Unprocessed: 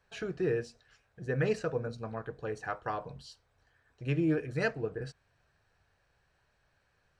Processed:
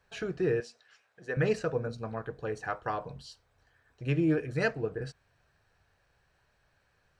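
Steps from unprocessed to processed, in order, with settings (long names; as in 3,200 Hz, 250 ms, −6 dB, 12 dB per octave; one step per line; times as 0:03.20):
0:00.60–0:01.37: meter weighting curve A
level +2 dB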